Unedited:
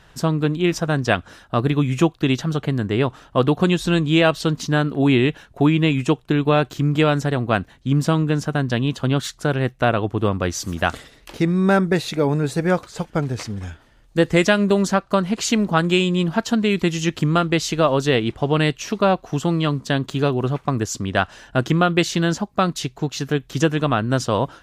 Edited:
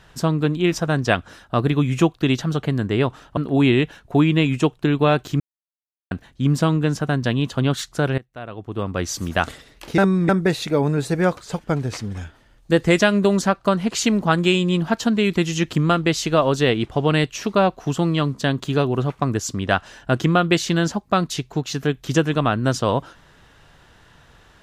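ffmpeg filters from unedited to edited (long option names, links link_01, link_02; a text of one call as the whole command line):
ffmpeg -i in.wav -filter_complex "[0:a]asplit=7[link_01][link_02][link_03][link_04][link_05][link_06][link_07];[link_01]atrim=end=3.372[link_08];[link_02]atrim=start=4.828:end=6.86,asetpts=PTS-STARTPTS,afade=type=out:start_time=2.028:duration=0.004:curve=hsin[link_09];[link_03]atrim=start=6.86:end=7.57,asetpts=PTS-STARTPTS,volume=0[link_10];[link_04]atrim=start=7.57:end=9.64,asetpts=PTS-STARTPTS,afade=type=in:duration=0.004:curve=hsin,afade=type=out:start_time=2.066:duration=0.004:curve=hsin:silence=0.0891251[link_11];[link_05]atrim=start=9.64:end=11.442,asetpts=PTS-STARTPTS,afade=type=in:duration=0.92:curve=qua:silence=0.0891251[link_12];[link_06]atrim=start=11.438:end=11.752,asetpts=PTS-STARTPTS,areverse[link_13];[link_07]atrim=start=11.748[link_14];[link_09][link_10][link_11][link_12]concat=n=4:v=0:a=1[link_15];[link_08][link_15]acrossfade=duration=0.004:curve1=hsin:curve2=hsin[link_16];[link_16][link_13]acrossfade=duration=0.004:curve1=hsin:curve2=hsin[link_17];[link_17][link_14]acrossfade=duration=0.004:curve1=hsin:curve2=hsin" out.wav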